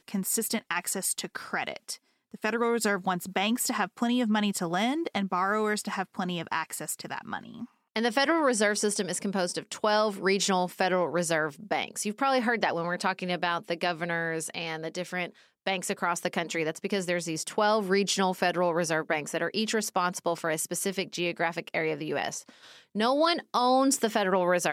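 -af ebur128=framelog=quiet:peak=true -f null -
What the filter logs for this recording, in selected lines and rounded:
Integrated loudness:
  I:         -28.3 LUFS
  Threshold: -38.5 LUFS
Loudness range:
  LRA:         3.9 LU
  Threshold: -48.6 LUFS
  LRA low:   -30.9 LUFS
  LRA high:  -27.0 LUFS
True peak:
  Peak:      -13.0 dBFS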